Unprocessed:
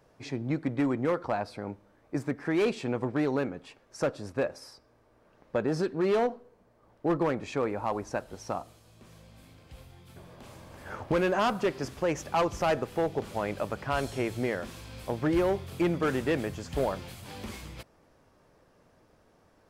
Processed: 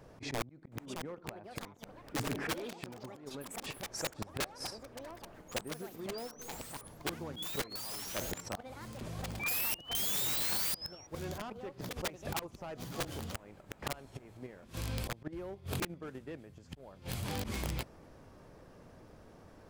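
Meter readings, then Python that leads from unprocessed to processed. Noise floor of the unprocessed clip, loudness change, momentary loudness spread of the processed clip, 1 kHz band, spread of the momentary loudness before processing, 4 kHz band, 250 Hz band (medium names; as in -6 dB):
-64 dBFS, -8.0 dB, 19 LU, -11.0 dB, 15 LU, +3.5 dB, -13.0 dB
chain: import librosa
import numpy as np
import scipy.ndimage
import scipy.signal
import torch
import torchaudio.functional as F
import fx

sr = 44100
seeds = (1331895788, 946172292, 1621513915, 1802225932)

p1 = fx.low_shelf(x, sr, hz=380.0, db=6.0)
p2 = fx.spec_paint(p1, sr, seeds[0], shape='rise', start_s=9.39, length_s=1.68, low_hz=2300.0, high_hz=5800.0, level_db=-32.0)
p3 = fx.auto_swell(p2, sr, attack_ms=121.0)
p4 = fx.gate_flip(p3, sr, shuts_db=-25.0, range_db=-26)
p5 = fx.level_steps(p4, sr, step_db=17)
p6 = p4 + (p5 * 10.0 ** (3.0 / 20.0))
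p7 = (np.mod(10.0 ** (28.0 / 20.0) * p6 + 1.0, 2.0) - 1.0) / 10.0 ** (28.0 / 20.0)
y = fx.echo_pitch(p7, sr, ms=720, semitones=6, count=3, db_per_echo=-6.0)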